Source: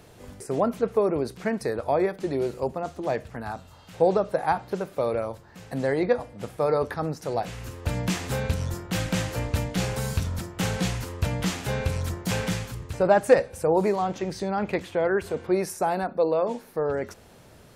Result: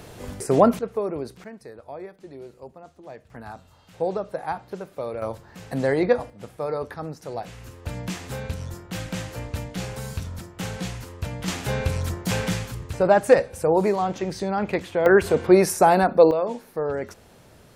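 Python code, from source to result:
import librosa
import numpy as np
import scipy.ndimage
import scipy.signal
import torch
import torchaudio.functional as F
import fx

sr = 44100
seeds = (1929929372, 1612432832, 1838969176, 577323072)

y = fx.gain(x, sr, db=fx.steps((0.0, 8.0), (0.79, -4.0), (1.44, -14.0), (3.3, -5.0), (5.22, 3.0), (6.3, -4.5), (11.48, 2.0), (15.06, 9.0), (16.31, 0.0)))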